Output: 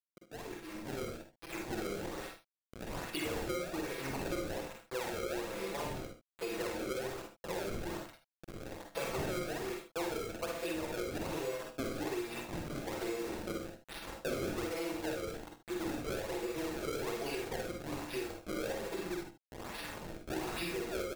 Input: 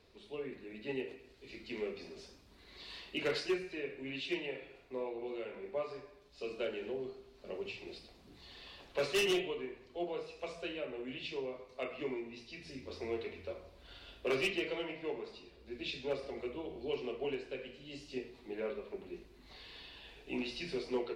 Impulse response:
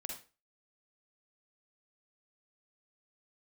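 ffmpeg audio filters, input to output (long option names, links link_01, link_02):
-filter_complex "[0:a]acrusher=bits=7:mix=0:aa=0.000001,aecho=1:1:6:0.96,acrusher=samples=28:mix=1:aa=0.000001:lfo=1:lforange=44.8:lforate=1.2,asoftclip=type=tanh:threshold=-27dB,dynaudnorm=framelen=480:gausssize=5:maxgain=8.5dB[link_01];[1:a]atrim=start_sample=2205,atrim=end_sample=3087[link_02];[link_01][link_02]afir=irnorm=-1:irlink=0,acompressor=threshold=-35dB:ratio=6,bandreject=frequency=3000:width=24,aecho=1:1:47|77:0.282|0.282"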